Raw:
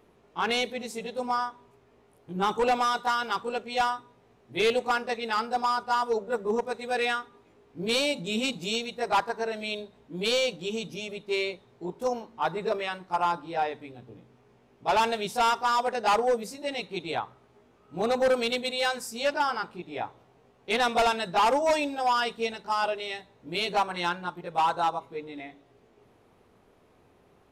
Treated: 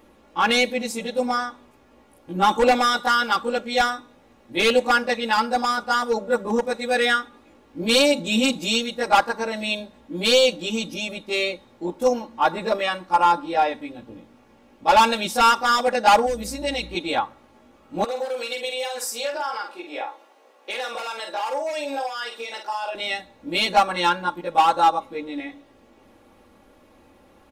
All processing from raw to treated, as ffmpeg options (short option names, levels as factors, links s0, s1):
-filter_complex "[0:a]asettb=1/sr,asplit=3[s0][s1][s2];[s0]atrim=end=16.264[s3];[s1]atrim=start=16.26:end=16.95,asetpts=PTS-STARTPTS,afade=t=in:d=0.004:c=qsin,afade=t=out:st=0.686:d=0.004:c=qsin,acrossover=split=120|3000[s4][s5][s6];[s5]acompressor=threshold=0.02:ratio=3:attack=3.2:release=140:knee=2.83:detection=peak[s7];[s4][s7][s6]amix=inputs=3:normalize=0,aeval=exprs='val(0)+0.00447*(sin(2*PI*60*n/s)+sin(2*PI*2*60*n/s)/2+sin(2*PI*3*60*n/s)/3+sin(2*PI*4*60*n/s)/4+sin(2*PI*5*60*n/s)/5)':c=same[s8];[s2]atrim=start=16.946[s9];[s3][s8]acrossfade=d=0.004:c1=hsin:c2=qsin[s10];[s10][s9]acrossfade=d=0.004:c1=qsin:c2=hsin,asettb=1/sr,asplit=3[s11][s12][s13];[s11]atrim=end=18.044[s14];[s12]atrim=start=18.04:end=22.95,asetpts=PTS-STARTPTS,afade=t=in:d=0.004:c=qsin,afade=t=out:st=4.906:d=0.004:c=qsin,highpass=f=380:w=0.5412,highpass=f=380:w=1.3066,acompressor=threshold=0.0224:ratio=10:attack=3.2:release=140:knee=1:detection=peak,asplit=2[s15][s16];[s16]adelay=47,volume=0.501[s17];[s15][s17]amix=inputs=2:normalize=0,atrim=end_sample=216531[s18];[s13]atrim=start=22.946[s19];[s14][s18]acrossfade=d=0.004:c1=hsin:c2=qsin[s20];[s20][s19]acrossfade=d=0.004:c1=qsin:c2=hsin,highshelf=f=9600:g=3.5,aecho=1:1:3.6:0.75,volume=2"